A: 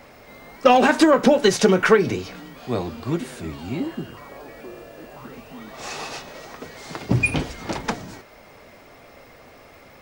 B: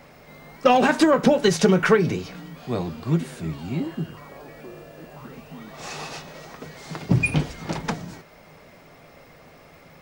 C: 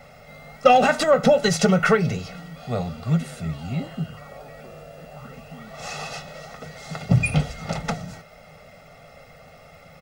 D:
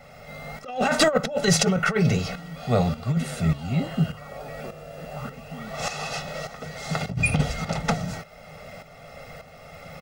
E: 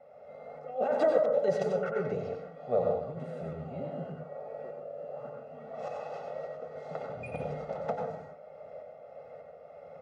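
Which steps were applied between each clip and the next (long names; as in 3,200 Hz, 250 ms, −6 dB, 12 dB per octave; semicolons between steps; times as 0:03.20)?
parametric band 160 Hz +11.5 dB 0.34 octaves; level −2.5 dB
comb filter 1.5 ms, depth 85%; level −1 dB
compressor whose output falls as the input rises −20 dBFS, ratio −0.5; shaped tremolo saw up 1.7 Hz, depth 65%; level +4 dB
resonant band-pass 540 Hz, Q 2.7; dense smooth reverb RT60 0.54 s, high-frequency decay 0.6×, pre-delay 80 ms, DRR 1.5 dB; level −2 dB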